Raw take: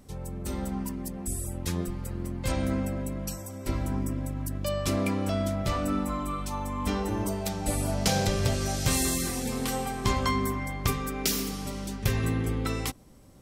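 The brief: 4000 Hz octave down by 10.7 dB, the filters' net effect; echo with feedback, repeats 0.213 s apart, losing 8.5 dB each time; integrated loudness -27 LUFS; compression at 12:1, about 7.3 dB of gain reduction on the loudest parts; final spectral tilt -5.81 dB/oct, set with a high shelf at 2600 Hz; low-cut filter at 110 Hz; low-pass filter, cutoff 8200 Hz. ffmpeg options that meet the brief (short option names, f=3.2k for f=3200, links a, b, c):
-af "highpass=110,lowpass=8.2k,highshelf=f=2.6k:g=-7,equalizer=f=4k:t=o:g=-7.5,acompressor=threshold=-31dB:ratio=12,aecho=1:1:213|426|639|852:0.376|0.143|0.0543|0.0206,volume=9.5dB"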